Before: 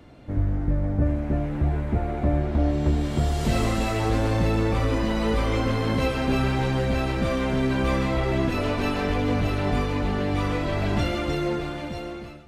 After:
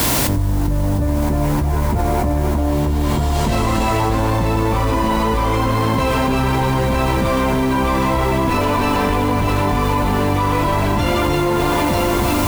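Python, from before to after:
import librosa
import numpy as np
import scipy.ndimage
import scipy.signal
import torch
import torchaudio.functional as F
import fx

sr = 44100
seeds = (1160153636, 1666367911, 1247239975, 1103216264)

p1 = fx.cvsd(x, sr, bps=64000)
p2 = fx.peak_eq(p1, sr, hz=980.0, db=13.5, octaves=0.27)
p3 = fx.quant_dither(p2, sr, seeds[0], bits=6, dither='triangular')
p4 = p2 + (p3 * librosa.db_to_amplitude(-7.5))
p5 = fx.echo_diffused(p4, sr, ms=1190, feedback_pct=60, wet_db=-15)
p6 = fx.env_flatten(p5, sr, amount_pct=100)
y = p6 * librosa.db_to_amplitude(-2.5)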